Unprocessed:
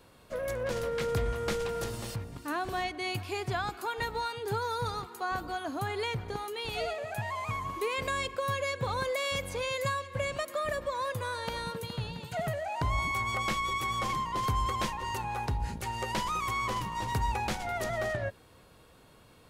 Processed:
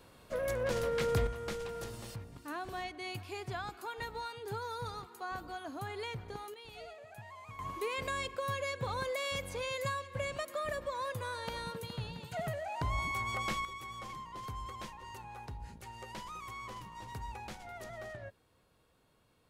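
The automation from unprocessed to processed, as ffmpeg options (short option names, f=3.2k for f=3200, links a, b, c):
-af "asetnsamples=n=441:p=0,asendcmd='1.27 volume volume -7.5dB;6.54 volume volume -15dB;7.59 volume volume -4.5dB;13.65 volume volume -13dB',volume=-0.5dB"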